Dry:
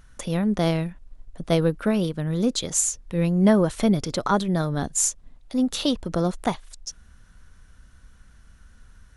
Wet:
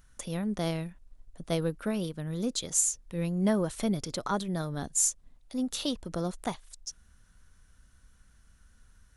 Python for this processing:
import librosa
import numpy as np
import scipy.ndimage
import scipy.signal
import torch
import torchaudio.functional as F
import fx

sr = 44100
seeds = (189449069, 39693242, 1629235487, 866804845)

y = fx.high_shelf(x, sr, hz=6100.0, db=9.0)
y = F.gain(torch.from_numpy(y), -9.0).numpy()